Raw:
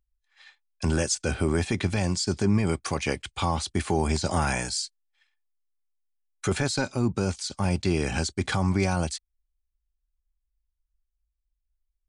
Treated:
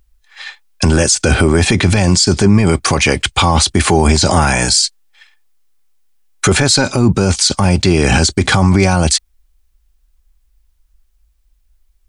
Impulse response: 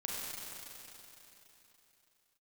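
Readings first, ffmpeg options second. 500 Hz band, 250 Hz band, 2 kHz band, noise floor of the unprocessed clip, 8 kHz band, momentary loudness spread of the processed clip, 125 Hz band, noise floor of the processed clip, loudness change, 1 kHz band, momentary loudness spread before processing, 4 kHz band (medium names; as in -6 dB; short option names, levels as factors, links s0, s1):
+13.5 dB, +13.5 dB, +15.5 dB, -80 dBFS, +17.5 dB, 4 LU, +14.0 dB, -58 dBFS, +15.0 dB, +14.0 dB, 6 LU, +18.0 dB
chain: -af "alimiter=level_in=15:limit=0.891:release=50:level=0:latency=1,volume=0.891"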